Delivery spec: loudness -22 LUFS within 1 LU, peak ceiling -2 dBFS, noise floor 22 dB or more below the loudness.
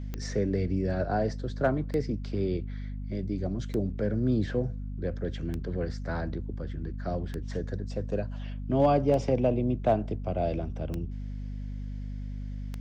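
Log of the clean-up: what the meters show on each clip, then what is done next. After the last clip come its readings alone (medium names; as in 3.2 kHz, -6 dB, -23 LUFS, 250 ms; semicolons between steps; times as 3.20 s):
clicks found 8; hum 50 Hz; highest harmonic 250 Hz; hum level -33 dBFS; loudness -31.0 LUFS; peak level -12.5 dBFS; loudness target -22.0 LUFS
-> de-click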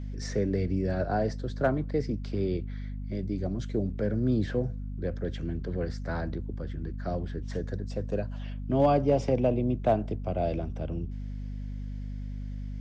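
clicks found 0; hum 50 Hz; highest harmonic 250 Hz; hum level -33 dBFS
-> de-hum 50 Hz, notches 5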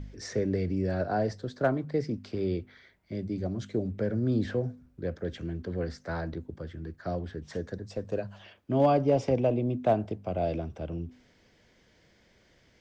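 hum not found; loudness -31.0 LUFS; peak level -13.0 dBFS; loudness target -22.0 LUFS
-> trim +9 dB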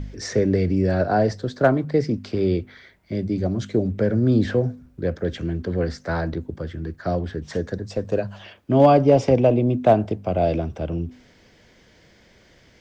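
loudness -22.0 LUFS; peak level -4.0 dBFS; noise floor -55 dBFS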